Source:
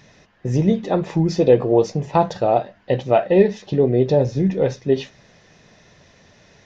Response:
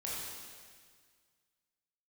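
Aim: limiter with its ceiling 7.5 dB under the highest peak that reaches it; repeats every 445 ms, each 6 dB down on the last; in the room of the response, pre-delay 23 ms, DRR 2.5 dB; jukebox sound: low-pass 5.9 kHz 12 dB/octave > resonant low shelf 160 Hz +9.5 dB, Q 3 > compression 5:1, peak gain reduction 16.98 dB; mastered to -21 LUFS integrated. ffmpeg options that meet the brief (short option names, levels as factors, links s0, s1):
-filter_complex "[0:a]alimiter=limit=0.316:level=0:latency=1,aecho=1:1:445|890|1335|1780|2225|2670:0.501|0.251|0.125|0.0626|0.0313|0.0157,asplit=2[s0][s1];[1:a]atrim=start_sample=2205,adelay=23[s2];[s1][s2]afir=irnorm=-1:irlink=0,volume=0.596[s3];[s0][s3]amix=inputs=2:normalize=0,lowpass=5900,lowshelf=f=160:t=q:w=3:g=9.5,acompressor=threshold=0.0891:ratio=5,volume=1.5"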